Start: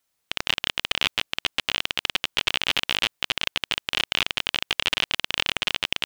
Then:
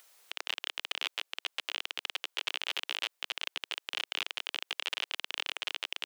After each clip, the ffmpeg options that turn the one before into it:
-af "highpass=f=400:w=0.5412,highpass=f=400:w=1.3066,alimiter=limit=-14dB:level=0:latency=1:release=39,acompressor=mode=upward:threshold=-44dB:ratio=2.5,volume=-2.5dB"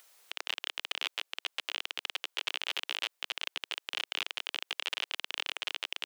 -af anull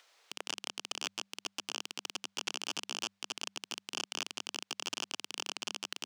-filter_complex "[0:a]aeval=exprs='(mod(7.94*val(0)+1,2)-1)/7.94':c=same,acrossover=split=200 6300:gain=0.0708 1 0.0891[a][b][c];[a][b][c]amix=inputs=3:normalize=0,bandreject=f=98.57:t=h:w=4,bandreject=f=197.14:t=h:w=4,volume=1dB"

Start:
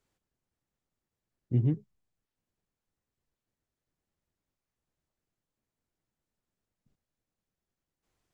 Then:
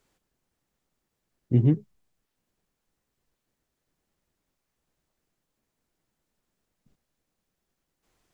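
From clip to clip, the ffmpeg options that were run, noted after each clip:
-af "equalizer=f=94:t=o:w=1:g=-5.5,volume=8.5dB"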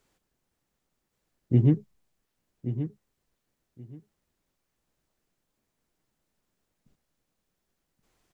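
-af "aecho=1:1:1127|2254:0.299|0.0537"

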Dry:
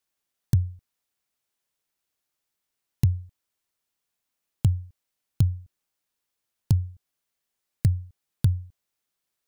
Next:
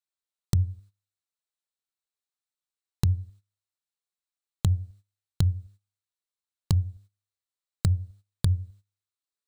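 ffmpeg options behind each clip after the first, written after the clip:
-af "bandreject=f=100.6:t=h:w=4,bandreject=f=201.2:t=h:w=4,bandreject=f=301.8:t=h:w=4,bandreject=f=402.4:t=h:w=4,bandreject=f=503:t=h:w=4,bandreject=f=603.6:t=h:w=4,bandreject=f=704.2:t=h:w=4,agate=range=-16dB:threshold=-50dB:ratio=16:detection=peak,equalizer=f=125:t=o:w=0.33:g=-11,equalizer=f=250:t=o:w=0.33:g=-10,equalizer=f=1.25k:t=o:w=0.33:g=4,equalizer=f=4k:t=o:w=0.33:g=8,equalizer=f=8k:t=o:w=0.33:g=6,equalizer=f=16k:t=o:w=0.33:g=-9,volume=2dB"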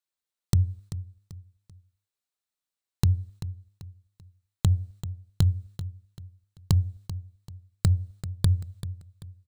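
-af "aecho=1:1:388|776|1164:0.224|0.0784|0.0274,volume=1.5dB"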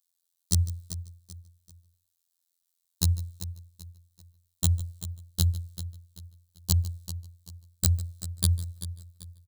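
-af "afftfilt=real='hypot(re,im)*cos(PI*b)':imag='0':win_size=2048:overlap=0.75,aecho=1:1:151:0.112,aexciter=amount=6:drive=3.1:freq=3.5k,volume=-1.5dB"

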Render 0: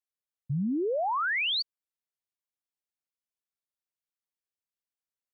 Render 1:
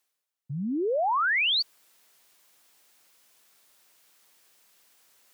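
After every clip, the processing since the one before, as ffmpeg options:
-af "highpass=f=340:p=1,areverse,acompressor=mode=upward:threshold=-44dB:ratio=2.5,areverse,volume=4dB"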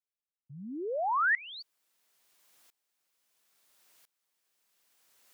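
-af "aeval=exprs='val(0)*pow(10,-23*if(lt(mod(-0.74*n/s,1),2*abs(-0.74)/1000),1-mod(-0.74*n/s,1)/(2*abs(-0.74)/1000),(mod(-0.74*n/s,1)-2*abs(-0.74)/1000)/(1-2*abs(-0.74)/1000))/20)':c=same"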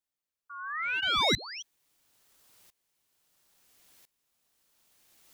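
-af "bandreject=f=670:w=12,aeval=exprs='clip(val(0),-1,0.0211)':c=same,aeval=exprs='val(0)*sin(2*PI*1800*n/s+1800*0.3/0.88*sin(2*PI*0.88*n/s))':c=same,volume=6.5dB"

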